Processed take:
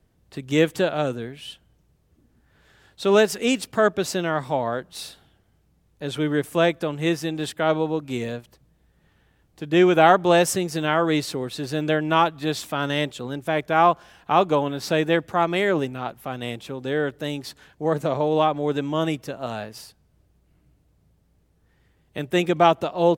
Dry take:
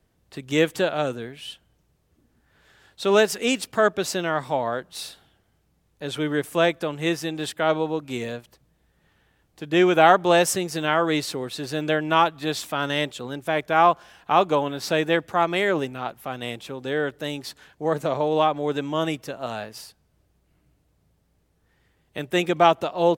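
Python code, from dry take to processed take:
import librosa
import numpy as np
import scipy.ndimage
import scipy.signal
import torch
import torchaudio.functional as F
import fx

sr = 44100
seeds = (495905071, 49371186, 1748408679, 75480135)

y = fx.low_shelf(x, sr, hz=360.0, db=5.5)
y = y * librosa.db_to_amplitude(-1.0)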